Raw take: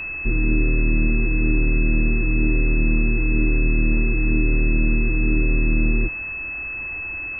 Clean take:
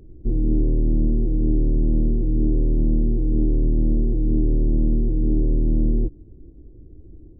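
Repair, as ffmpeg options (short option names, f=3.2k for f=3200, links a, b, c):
-af "bandreject=f=2.6k:w=30,afwtdn=0.014"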